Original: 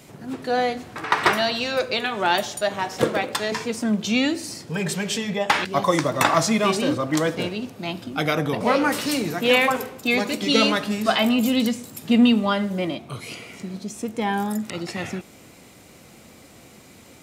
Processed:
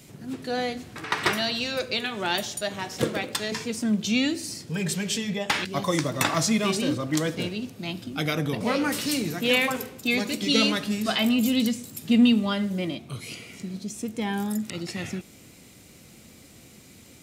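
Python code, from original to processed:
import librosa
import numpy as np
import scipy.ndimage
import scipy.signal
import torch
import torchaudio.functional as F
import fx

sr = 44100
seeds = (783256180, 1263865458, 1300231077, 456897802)

y = fx.peak_eq(x, sr, hz=870.0, db=-9.0, octaves=2.3)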